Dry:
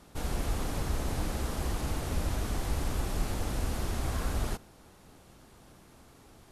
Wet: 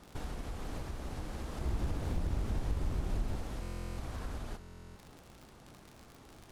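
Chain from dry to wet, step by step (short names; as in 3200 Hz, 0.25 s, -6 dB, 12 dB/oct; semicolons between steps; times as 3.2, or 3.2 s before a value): high shelf 6800 Hz -7 dB; crackle 67/s -40 dBFS; compressor 6:1, threshold -37 dBFS, peak gain reduction 12.5 dB; 1.61–3.36 low shelf 390 Hz +7.5 dB; on a send: flutter echo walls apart 11 m, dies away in 0.36 s; on the sum: stuck buffer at 3.61/4.59, samples 1024, times 15; Doppler distortion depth 0.8 ms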